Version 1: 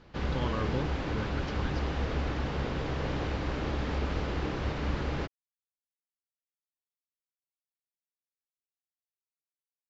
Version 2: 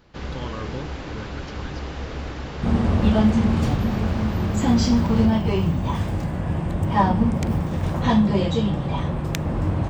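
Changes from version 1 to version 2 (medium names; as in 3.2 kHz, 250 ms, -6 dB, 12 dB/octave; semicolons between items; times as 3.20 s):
second sound: unmuted; master: remove distance through air 75 m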